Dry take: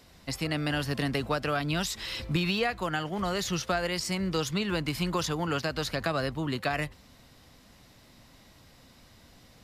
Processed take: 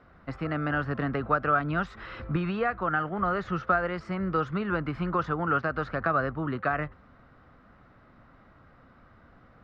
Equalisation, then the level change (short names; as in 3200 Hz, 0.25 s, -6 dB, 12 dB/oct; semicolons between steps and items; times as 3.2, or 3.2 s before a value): synth low-pass 1300 Hz, resonance Q 4; bell 980 Hz -6.5 dB 0.49 oct; 0.0 dB